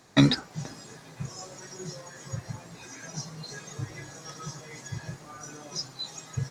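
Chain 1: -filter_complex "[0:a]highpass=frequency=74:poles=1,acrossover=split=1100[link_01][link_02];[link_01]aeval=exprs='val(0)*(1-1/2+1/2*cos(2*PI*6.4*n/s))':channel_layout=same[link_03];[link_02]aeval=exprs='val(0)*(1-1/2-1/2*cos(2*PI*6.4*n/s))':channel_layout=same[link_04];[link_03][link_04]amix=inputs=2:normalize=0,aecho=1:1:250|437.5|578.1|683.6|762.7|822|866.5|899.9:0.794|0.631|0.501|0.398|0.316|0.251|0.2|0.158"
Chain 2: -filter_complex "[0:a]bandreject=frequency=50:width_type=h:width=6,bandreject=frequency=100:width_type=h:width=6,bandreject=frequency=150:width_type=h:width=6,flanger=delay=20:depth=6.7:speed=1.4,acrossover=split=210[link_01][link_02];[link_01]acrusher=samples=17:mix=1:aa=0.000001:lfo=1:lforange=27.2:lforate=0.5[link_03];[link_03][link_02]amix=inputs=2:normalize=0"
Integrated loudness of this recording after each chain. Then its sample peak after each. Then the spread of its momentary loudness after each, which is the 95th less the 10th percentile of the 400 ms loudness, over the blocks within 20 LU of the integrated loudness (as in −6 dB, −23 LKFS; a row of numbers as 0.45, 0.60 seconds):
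−36.5, −37.0 LKFS; −14.0, −9.0 dBFS; 12, 12 LU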